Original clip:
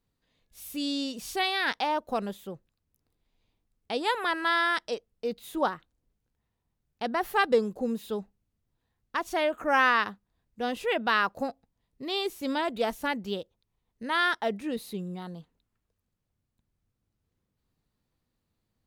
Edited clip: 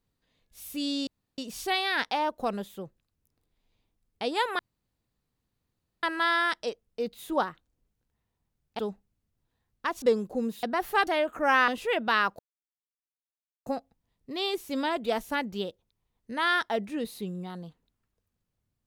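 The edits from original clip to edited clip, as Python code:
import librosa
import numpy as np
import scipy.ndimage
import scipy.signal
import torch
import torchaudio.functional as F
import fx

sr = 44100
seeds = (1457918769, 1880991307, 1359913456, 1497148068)

y = fx.edit(x, sr, fx.insert_room_tone(at_s=1.07, length_s=0.31),
    fx.insert_room_tone(at_s=4.28, length_s=1.44),
    fx.swap(start_s=7.04, length_s=0.44, other_s=8.09, other_length_s=1.23),
    fx.cut(start_s=9.93, length_s=0.74),
    fx.insert_silence(at_s=11.38, length_s=1.27), tone=tone)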